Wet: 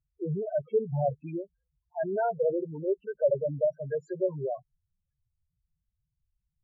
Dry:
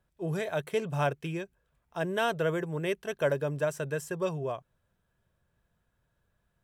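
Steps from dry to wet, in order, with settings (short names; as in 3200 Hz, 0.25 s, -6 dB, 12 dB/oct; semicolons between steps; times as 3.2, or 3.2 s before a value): treble ducked by the level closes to 1800 Hz, closed at -27 dBFS; spectral noise reduction 8 dB; loudest bins only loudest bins 4; gain +4.5 dB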